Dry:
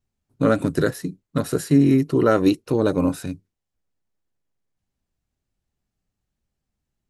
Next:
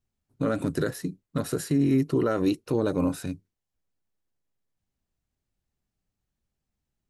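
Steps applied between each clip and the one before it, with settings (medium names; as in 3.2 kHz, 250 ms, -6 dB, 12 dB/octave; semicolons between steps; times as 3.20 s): peak limiter -12 dBFS, peak gain reduction 7 dB; trim -3 dB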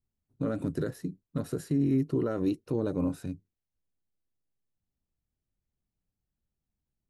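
tilt shelf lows +4.5 dB, about 660 Hz; trim -7 dB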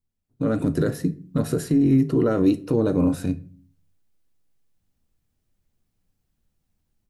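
level rider gain up to 11 dB; peak limiter -11.5 dBFS, peak gain reduction 4 dB; reverberation RT60 0.45 s, pre-delay 4 ms, DRR 10.5 dB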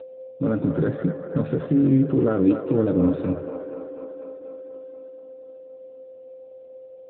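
feedback echo behind a band-pass 243 ms, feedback 70%, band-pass 900 Hz, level -5.5 dB; whistle 520 Hz -34 dBFS; AMR-NB 10.2 kbps 8 kHz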